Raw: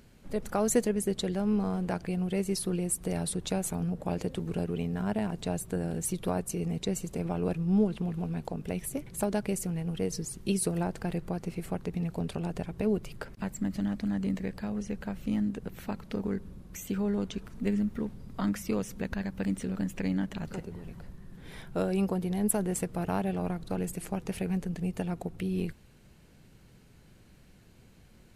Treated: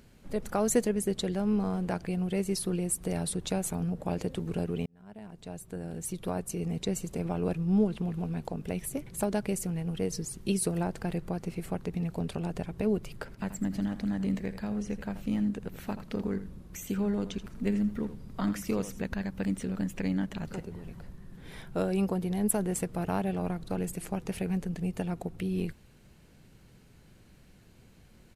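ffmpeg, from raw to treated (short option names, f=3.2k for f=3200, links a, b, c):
-filter_complex "[0:a]asplit=3[a][b][c];[a]afade=t=out:st=13.31:d=0.02[d];[b]aecho=1:1:82:0.237,afade=t=in:st=13.31:d=0.02,afade=t=out:st=19.01:d=0.02[e];[c]afade=t=in:st=19.01:d=0.02[f];[d][e][f]amix=inputs=3:normalize=0,asplit=2[g][h];[g]atrim=end=4.86,asetpts=PTS-STARTPTS,afade=t=out:st=4.856:d=0.004:c=hsin[i];[h]atrim=start=4.86,asetpts=PTS-STARTPTS,afade=t=in:d=1.96[j];[i][j]concat=n=2:v=0:a=1"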